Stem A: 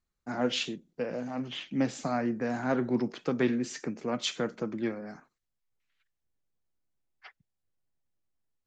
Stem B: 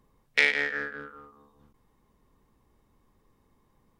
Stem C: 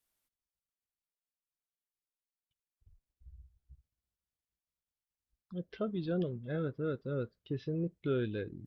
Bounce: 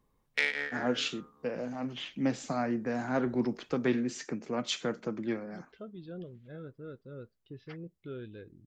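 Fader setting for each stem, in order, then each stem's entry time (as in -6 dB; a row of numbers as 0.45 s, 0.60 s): -1.5 dB, -7.0 dB, -9.5 dB; 0.45 s, 0.00 s, 0.00 s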